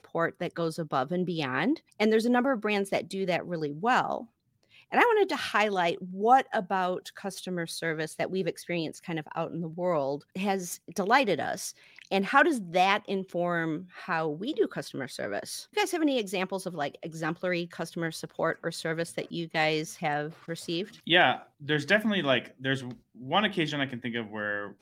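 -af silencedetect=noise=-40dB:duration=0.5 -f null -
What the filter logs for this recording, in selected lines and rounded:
silence_start: 4.24
silence_end: 4.92 | silence_duration: 0.68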